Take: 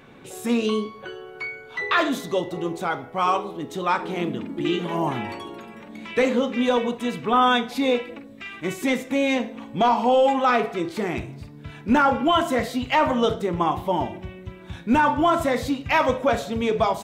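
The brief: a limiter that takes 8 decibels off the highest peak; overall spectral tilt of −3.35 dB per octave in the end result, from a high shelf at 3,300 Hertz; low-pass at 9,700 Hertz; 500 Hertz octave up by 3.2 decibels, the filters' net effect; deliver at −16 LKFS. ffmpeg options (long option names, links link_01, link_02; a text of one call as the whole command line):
ffmpeg -i in.wav -af "lowpass=9700,equalizer=frequency=500:width_type=o:gain=3.5,highshelf=frequency=3300:gain=8,volume=9.5dB,alimiter=limit=-6dB:level=0:latency=1" out.wav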